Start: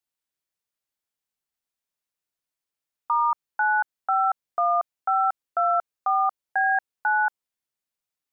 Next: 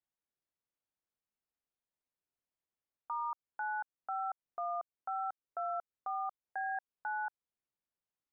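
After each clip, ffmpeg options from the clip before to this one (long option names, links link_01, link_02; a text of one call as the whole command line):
ffmpeg -i in.wav -af "lowpass=frequency=1000:poles=1,alimiter=level_in=4.5dB:limit=-24dB:level=0:latency=1:release=219,volume=-4.5dB,volume=-2dB" out.wav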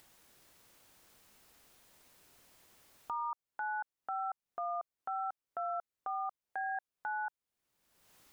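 ffmpeg -i in.wav -af "acompressor=mode=upward:threshold=-40dB:ratio=2.5" out.wav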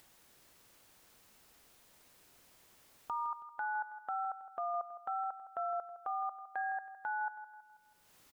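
ffmpeg -i in.wav -af "aecho=1:1:162|324|486|648|810:0.224|0.105|0.0495|0.0232|0.0109" out.wav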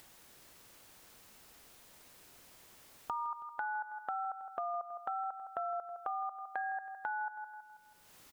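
ffmpeg -i in.wav -af "acompressor=threshold=-40dB:ratio=5,volume=5dB" out.wav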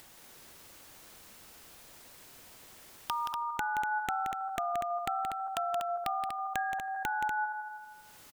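ffmpeg -i in.wav -af "aeval=exprs='(mod(18.8*val(0)+1,2)-1)/18.8':channel_layout=same,aecho=1:1:174.9|242:0.447|0.447,volume=4dB" out.wav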